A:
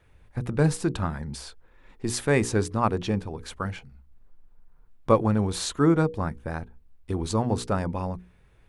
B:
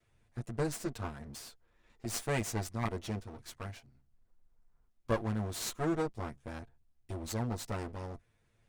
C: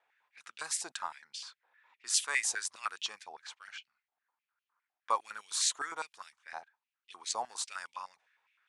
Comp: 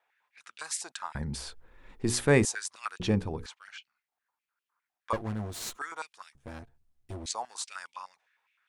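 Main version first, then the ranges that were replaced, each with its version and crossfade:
C
1.15–2.45 from A
3–3.46 from A
5.13–5.78 from B
6.35–7.26 from B

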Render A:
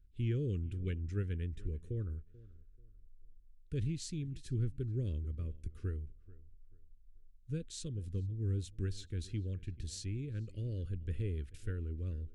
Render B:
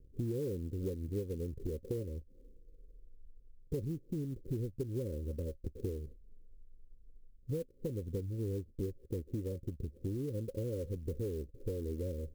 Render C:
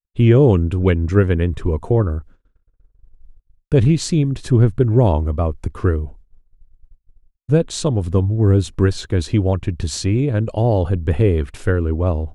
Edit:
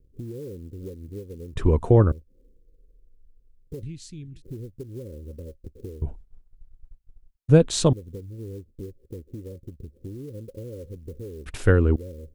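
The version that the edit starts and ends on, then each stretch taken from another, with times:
B
1.56–2.12 from C
3.83–4.42 from A
6.02–7.93 from C
11.46–11.96 from C

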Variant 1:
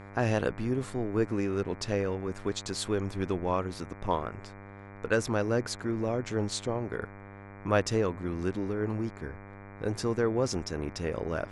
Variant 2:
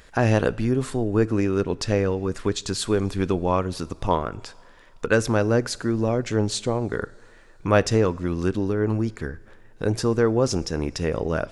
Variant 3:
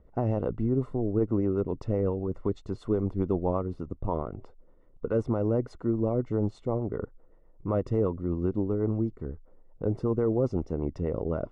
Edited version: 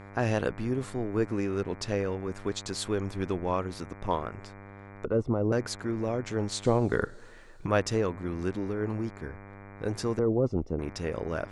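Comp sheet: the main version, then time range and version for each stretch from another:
1
5.05–5.52 from 3
6.65–7.66 from 2
10.19–10.79 from 3

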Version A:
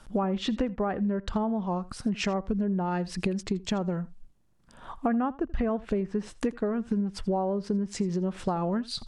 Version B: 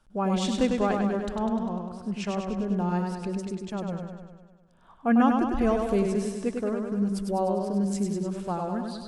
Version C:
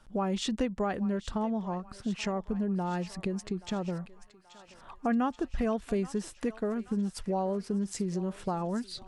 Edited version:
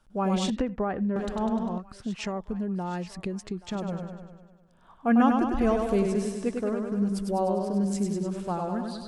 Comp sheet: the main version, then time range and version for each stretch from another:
B
0.5–1.16 from A
1.78–3.75 from C

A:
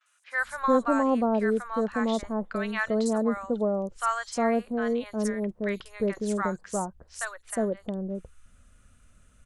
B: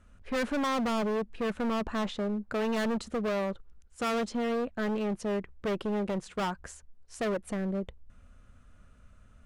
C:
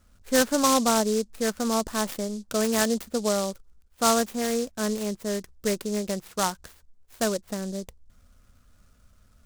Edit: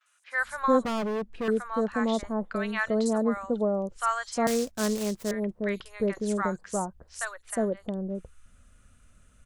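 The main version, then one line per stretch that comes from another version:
A
0.85–1.48 from B
4.47–5.31 from C

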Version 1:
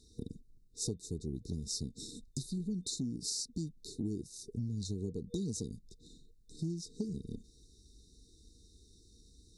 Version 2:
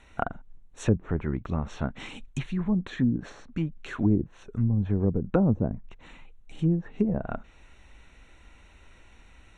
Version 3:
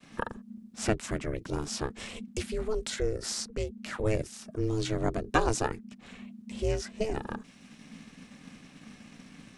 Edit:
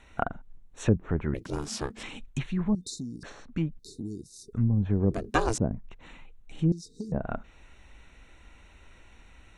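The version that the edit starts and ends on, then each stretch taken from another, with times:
2
1.34–2.03 from 3
2.75–3.23 from 1
3.79–4.53 from 1
5.11–5.58 from 3
6.72–7.12 from 1

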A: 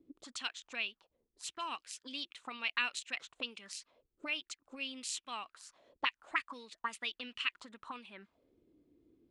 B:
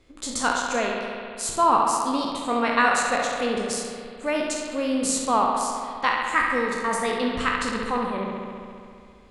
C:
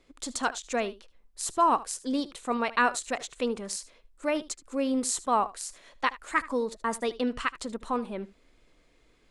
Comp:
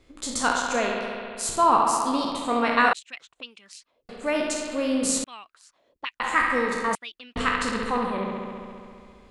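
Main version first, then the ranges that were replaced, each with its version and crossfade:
B
2.93–4.09 from A
5.24–6.2 from A
6.95–7.36 from A
not used: C

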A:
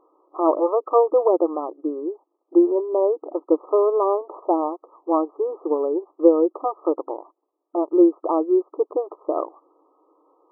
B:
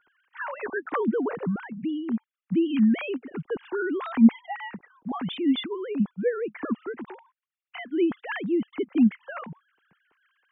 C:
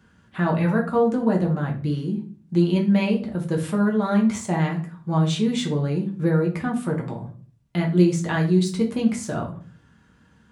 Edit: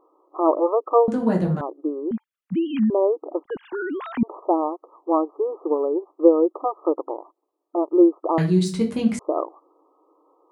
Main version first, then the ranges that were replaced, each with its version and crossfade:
A
1.08–1.61 from C
2.11–2.9 from B
3.44–4.23 from B
8.38–9.19 from C

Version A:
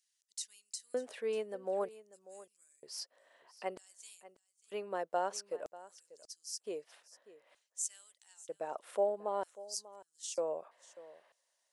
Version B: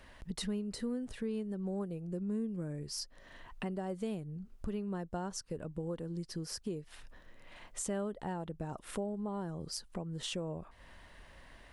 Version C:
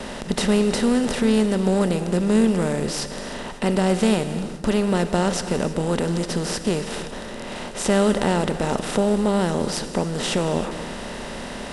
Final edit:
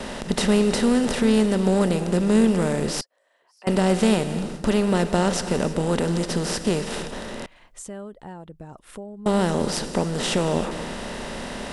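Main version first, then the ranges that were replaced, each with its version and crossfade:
C
3.01–3.67 from A
7.46–9.26 from B

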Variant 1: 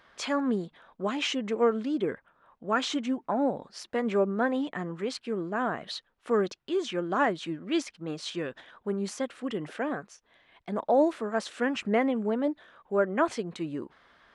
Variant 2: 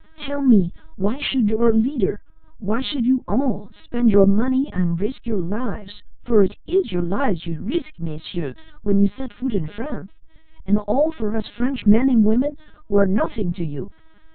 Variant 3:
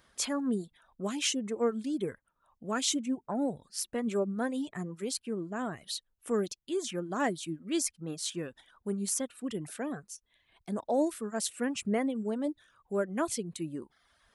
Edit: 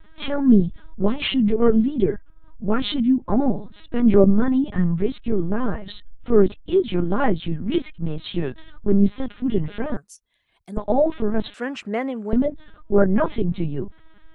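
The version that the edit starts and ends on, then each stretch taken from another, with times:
2
9.97–10.77 from 3
11.54–12.33 from 1

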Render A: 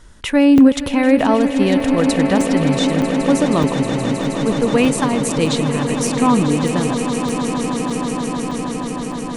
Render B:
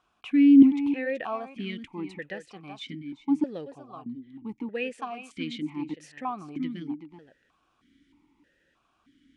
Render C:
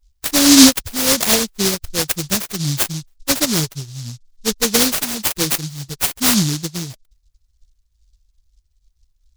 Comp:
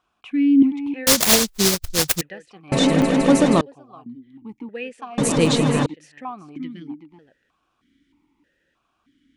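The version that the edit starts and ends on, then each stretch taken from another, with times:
B
1.07–2.21 from C
2.72–3.61 from A
5.18–5.86 from A

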